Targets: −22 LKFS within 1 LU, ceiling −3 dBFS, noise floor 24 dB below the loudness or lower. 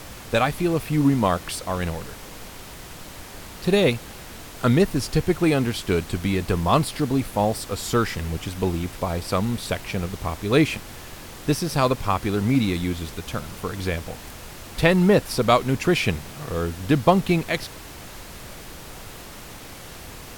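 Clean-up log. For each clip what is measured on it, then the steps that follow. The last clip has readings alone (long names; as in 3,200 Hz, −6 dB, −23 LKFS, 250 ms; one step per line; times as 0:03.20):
background noise floor −40 dBFS; target noise floor −47 dBFS; integrated loudness −23.0 LKFS; sample peak −4.0 dBFS; target loudness −22.0 LKFS
→ noise reduction from a noise print 7 dB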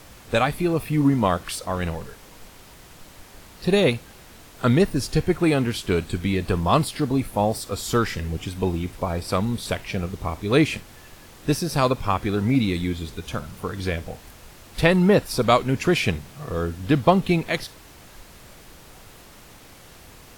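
background noise floor −47 dBFS; integrated loudness −23.0 LKFS; sample peak −4.5 dBFS; target loudness −22.0 LKFS
→ level +1 dB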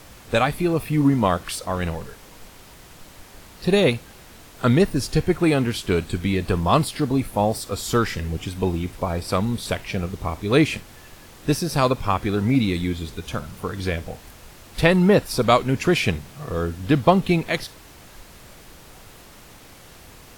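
integrated loudness −22.0 LKFS; sample peak −3.5 dBFS; background noise floor −46 dBFS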